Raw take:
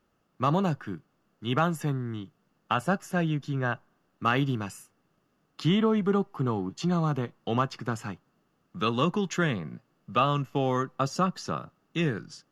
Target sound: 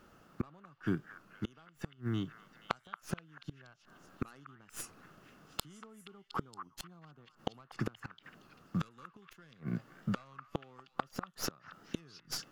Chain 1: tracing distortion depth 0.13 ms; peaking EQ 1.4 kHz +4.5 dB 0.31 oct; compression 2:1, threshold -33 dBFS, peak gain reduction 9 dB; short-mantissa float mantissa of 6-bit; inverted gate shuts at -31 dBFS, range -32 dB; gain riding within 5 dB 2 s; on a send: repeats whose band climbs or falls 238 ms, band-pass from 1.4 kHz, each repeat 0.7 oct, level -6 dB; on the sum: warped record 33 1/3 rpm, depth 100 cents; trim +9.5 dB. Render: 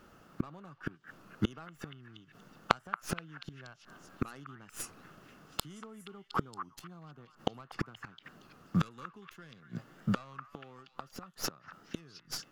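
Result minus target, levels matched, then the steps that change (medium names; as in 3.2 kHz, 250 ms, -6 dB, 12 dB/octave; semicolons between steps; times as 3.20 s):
compression: peak gain reduction -4 dB
change: compression 2:1, threshold -40.5 dBFS, peak gain reduction 12.5 dB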